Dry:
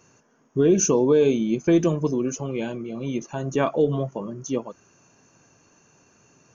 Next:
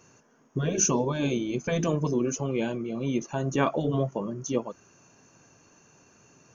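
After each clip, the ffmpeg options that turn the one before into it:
ffmpeg -i in.wav -af "afftfilt=real='re*lt(hypot(re,im),0.708)':imag='im*lt(hypot(re,im),0.708)':win_size=1024:overlap=0.75" out.wav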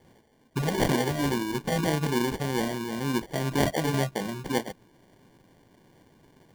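ffmpeg -i in.wav -af "acrusher=samples=34:mix=1:aa=0.000001" out.wav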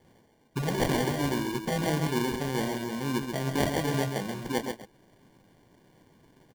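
ffmpeg -i in.wav -af "aecho=1:1:134:0.473,volume=-2.5dB" out.wav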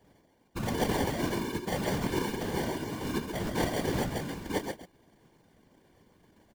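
ffmpeg -i in.wav -af "afftfilt=real='hypot(re,im)*cos(2*PI*random(0))':imag='hypot(re,im)*sin(2*PI*random(1))':win_size=512:overlap=0.75,volume=3.5dB" out.wav

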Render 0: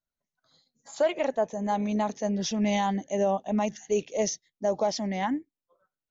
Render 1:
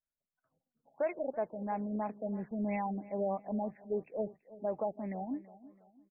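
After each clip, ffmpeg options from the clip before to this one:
ffmpeg -i in.wav -filter_complex "[0:a]equalizer=frequency=3000:width=2.3:gain=3.5,asplit=2[link_01][link_02];[link_02]adelay=330,lowpass=frequency=2300:poles=1,volume=-17.5dB,asplit=2[link_03][link_04];[link_04]adelay=330,lowpass=frequency=2300:poles=1,volume=0.4,asplit=2[link_05][link_06];[link_06]adelay=330,lowpass=frequency=2300:poles=1,volume=0.4[link_07];[link_01][link_03][link_05][link_07]amix=inputs=4:normalize=0,afftfilt=real='re*lt(b*sr/1024,780*pow(2700/780,0.5+0.5*sin(2*PI*3*pts/sr)))':imag='im*lt(b*sr/1024,780*pow(2700/780,0.5+0.5*sin(2*PI*3*pts/sr)))':win_size=1024:overlap=0.75,volume=-8.5dB" out.wav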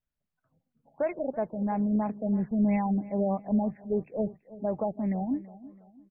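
ffmpeg -i in.wav -af "bass=frequency=250:gain=11,treble=frequency=4000:gain=-12,volume=3.5dB" out.wav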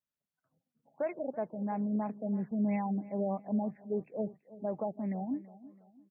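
ffmpeg -i in.wav -af "highpass=140,volume=-5dB" out.wav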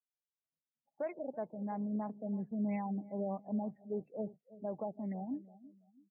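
ffmpeg -i in.wav -af "afftdn=noise_reduction=22:noise_floor=-51,volume=-4.5dB" out.wav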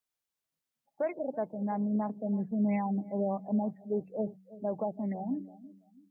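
ffmpeg -i in.wav -af "bandreject=frequency=94.64:width_type=h:width=4,bandreject=frequency=189.28:width_type=h:width=4,bandreject=frequency=283.92:width_type=h:width=4,volume=6.5dB" out.wav

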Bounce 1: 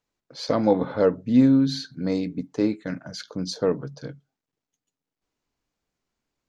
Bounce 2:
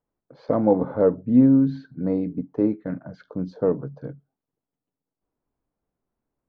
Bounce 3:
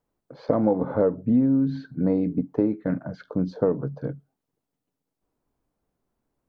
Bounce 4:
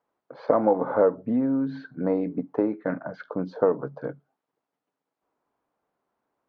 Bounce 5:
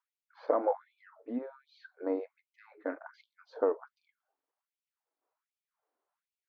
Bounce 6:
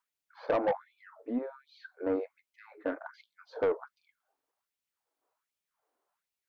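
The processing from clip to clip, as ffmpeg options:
ffmpeg -i in.wav -af "lowpass=1000,volume=1.5dB" out.wav
ffmpeg -i in.wav -af "acompressor=threshold=-22dB:ratio=6,volume=4.5dB" out.wav
ffmpeg -i in.wav -af "bandpass=frequency=1100:width_type=q:width=0.8:csg=0,volume=6.5dB" out.wav
ffmpeg -i in.wav -af "afftfilt=real='re*gte(b*sr/1024,240*pow(2300/240,0.5+0.5*sin(2*PI*1.3*pts/sr)))':imag='im*gte(b*sr/1024,240*pow(2300/240,0.5+0.5*sin(2*PI*1.3*pts/sr)))':win_size=1024:overlap=0.75,volume=-7dB" out.wav
ffmpeg -i in.wav -af "asoftclip=type=tanh:threshold=-25.5dB,volume=4dB" out.wav

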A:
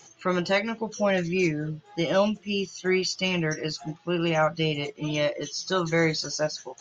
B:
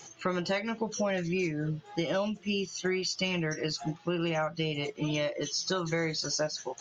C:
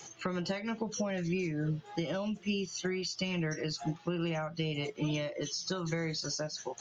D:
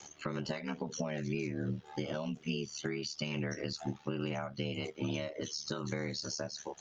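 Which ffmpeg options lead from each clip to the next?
ffmpeg -i in.wav -af "acompressor=threshold=-30dB:ratio=6,volume=2.5dB" out.wav
ffmpeg -i in.wav -filter_complex "[0:a]acrossover=split=240[link_01][link_02];[link_02]acompressor=threshold=-34dB:ratio=6[link_03];[link_01][link_03]amix=inputs=2:normalize=0" out.wav
ffmpeg -i in.wav -af "aeval=exprs='val(0)*sin(2*PI*37*n/s)':channel_layout=same" out.wav

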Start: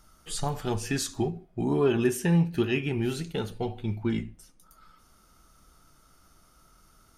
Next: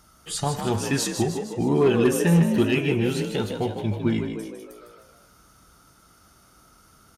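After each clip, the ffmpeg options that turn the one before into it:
ffmpeg -i in.wav -filter_complex "[0:a]highpass=54,asplit=2[link_01][link_02];[link_02]asplit=7[link_03][link_04][link_05][link_06][link_07][link_08][link_09];[link_03]adelay=154,afreqshift=50,volume=-7.5dB[link_10];[link_04]adelay=308,afreqshift=100,volume=-12.9dB[link_11];[link_05]adelay=462,afreqshift=150,volume=-18.2dB[link_12];[link_06]adelay=616,afreqshift=200,volume=-23.6dB[link_13];[link_07]adelay=770,afreqshift=250,volume=-28.9dB[link_14];[link_08]adelay=924,afreqshift=300,volume=-34.3dB[link_15];[link_09]adelay=1078,afreqshift=350,volume=-39.6dB[link_16];[link_10][link_11][link_12][link_13][link_14][link_15][link_16]amix=inputs=7:normalize=0[link_17];[link_01][link_17]amix=inputs=2:normalize=0,asoftclip=type=hard:threshold=-16.5dB,volume=4.5dB" out.wav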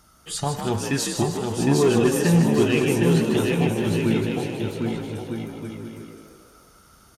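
ffmpeg -i in.wav -af "aecho=1:1:760|1254|1575|1784|1919:0.631|0.398|0.251|0.158|0.1" out.wav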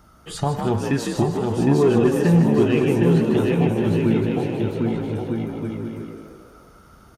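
ffmpeg -i in.wav -filter_complex "[0:a]equalizer=frequency=9100:width_type=o:width=3:gain=-13,asplit=2[link_01][link_02];[link_02]acompressor=threshold=-28dB:ratio=6,volume=1dB[link_03];[link_01][link_03]amix=inputs=2:normalize=0" out.wav

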